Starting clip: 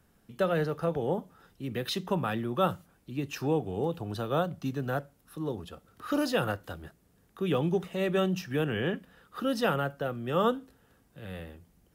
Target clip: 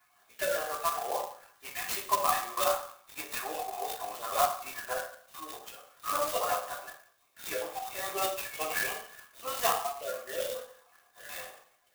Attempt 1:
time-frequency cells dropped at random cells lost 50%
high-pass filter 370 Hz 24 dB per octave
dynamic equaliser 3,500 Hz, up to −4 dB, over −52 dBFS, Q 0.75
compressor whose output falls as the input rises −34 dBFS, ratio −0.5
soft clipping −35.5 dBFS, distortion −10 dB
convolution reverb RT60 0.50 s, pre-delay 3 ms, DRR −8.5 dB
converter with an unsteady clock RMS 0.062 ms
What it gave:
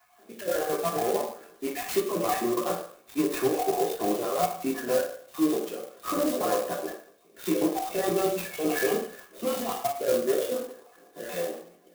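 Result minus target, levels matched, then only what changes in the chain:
soft clipping: distortion +16 dB; 500 Hz band +4.5 dB
change: high-pass filter 880 Hz 24 dB per octave
change: soft clipping −24.5 dBFS, distortion −25 dB

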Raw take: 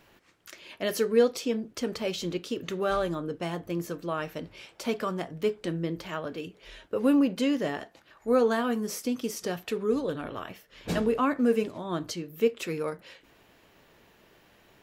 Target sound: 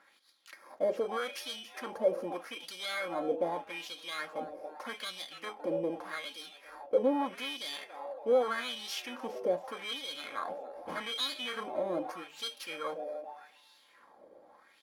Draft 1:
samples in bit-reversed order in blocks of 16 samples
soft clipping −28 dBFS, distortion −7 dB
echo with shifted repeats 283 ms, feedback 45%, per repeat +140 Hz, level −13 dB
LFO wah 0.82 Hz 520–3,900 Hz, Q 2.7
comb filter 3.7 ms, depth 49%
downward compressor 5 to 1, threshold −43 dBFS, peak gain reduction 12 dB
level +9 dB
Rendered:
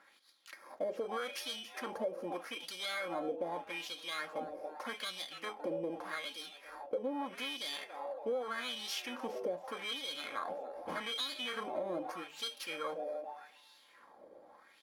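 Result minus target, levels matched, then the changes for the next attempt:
downward compressor: peak gain reduction +12 dB
remove: downward compressor 5 to 1, threshold −43 dBFS, peak gain reduction 12 dB

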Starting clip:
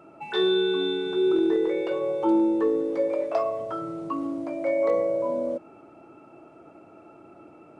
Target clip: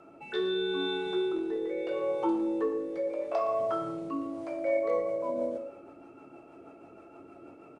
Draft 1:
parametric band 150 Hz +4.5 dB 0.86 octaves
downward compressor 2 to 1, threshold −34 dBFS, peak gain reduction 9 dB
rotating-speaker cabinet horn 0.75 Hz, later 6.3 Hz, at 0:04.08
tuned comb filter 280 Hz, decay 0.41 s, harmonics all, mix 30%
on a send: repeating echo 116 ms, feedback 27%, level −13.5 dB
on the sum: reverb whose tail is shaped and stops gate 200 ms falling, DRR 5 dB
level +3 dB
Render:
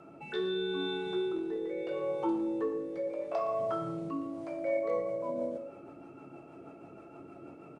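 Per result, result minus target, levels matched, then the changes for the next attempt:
125 Hz band +7.0 dB; downward compressor: peak gain reduction +3.5 dB
change: parametric band 150 Hz −4.5 dB 0.86 octaves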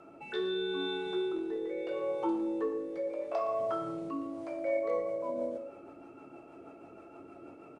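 downward compressor: peak gain reduction +3 dB
change: downward compressor 2 to 1, threshold −27.5 dBFS, peak gain reduction 5.5 dB

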